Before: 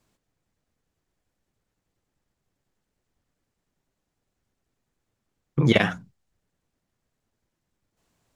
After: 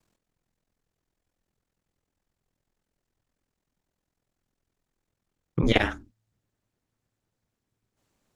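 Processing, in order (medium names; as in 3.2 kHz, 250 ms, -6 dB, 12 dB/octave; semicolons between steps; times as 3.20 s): ring modulator 21 Hz, from 5.63 s 110 Hz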